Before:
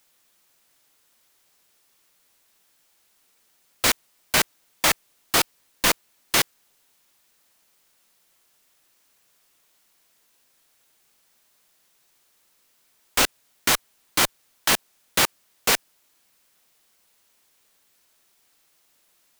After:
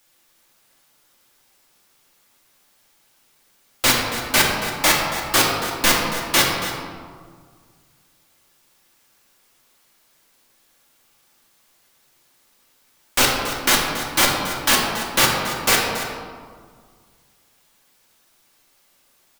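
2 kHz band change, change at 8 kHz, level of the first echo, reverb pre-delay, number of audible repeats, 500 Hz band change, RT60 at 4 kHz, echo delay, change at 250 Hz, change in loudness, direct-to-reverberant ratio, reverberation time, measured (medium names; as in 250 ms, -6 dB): +5.5 dB, +3.5 dB, -11.5 dB, 3 ms, 1, +6.0 dB, 1.1 s, 279 ms, +7.5 dB, +4.5 dB, -3.0 dB, 1.8 s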